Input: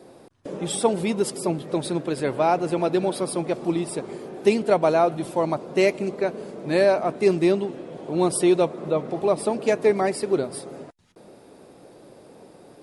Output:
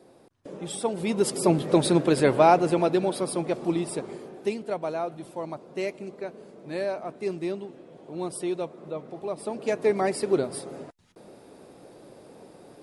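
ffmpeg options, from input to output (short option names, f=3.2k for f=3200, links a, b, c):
-af "volume=15dB,afade=t=in:st=0.94:d=0.67:silence=0.251189,afade=t=out:st=2.18:d=0.83:silence=0.446684,afade=t=out:st=4:d=0.55:silence=0.354813,afade=t=in:st=9.34:d=0.91:silence=0.316228"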